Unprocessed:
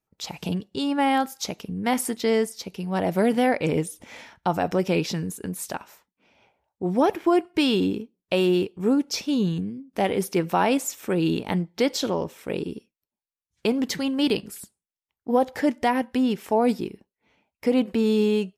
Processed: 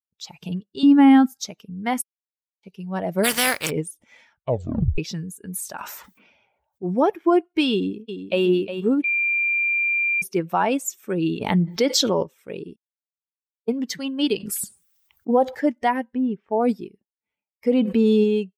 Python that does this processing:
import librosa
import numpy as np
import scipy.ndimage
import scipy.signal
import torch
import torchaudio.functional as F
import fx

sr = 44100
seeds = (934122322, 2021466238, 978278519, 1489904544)

y = fx.low_shelf_res(x, sr, hz=330.0, db=11.0, q=1.5, at=(0.83, 1.45))
y = fx.spec_flatten(y, sr, power=0.39, at=(3.23, 3.69), fade=0.02)
y = fx.sustainer(y, sr, db_per_s=33.0, at=(5.52, 6.97), fade=0.02)
y = fx.echo_throw(y, sr, start_s=7.72, length_s=0.72, ms=360, feedback_pct=55, wet_db=-6.5)
y = fx.env_flatten(y, sr, amount_pct=70, at=(11.41, 12.23))
y = fx.env_flatten(y, sr, amount_pct=50, at=(14.4, 15.55))
y = fx.spacing_loss(y, sr, db_at_10k=34, at=(16.13, 16.59), fade=0.02)
y = fx.env_flatten(y, sr, amount_pct=70, at=(17.69, 18.24))
y = fx.edit(y, sr, fx.silence(start_s=2.02, length_s=0.61),
    fx.tape_stop(start_s=4.32, length_s=0.66),
    fx.bleep(start_s=9.04, length_s=1.18, hz=2380.0, db=-22.0),
    fx.silence(start_s=12.76, length_s=0.92), tone=tone)
y = fx.bin_expand(y, sr, power=1.5)
y = F.gain(torch.from_numpy(y), 3.5).numpy()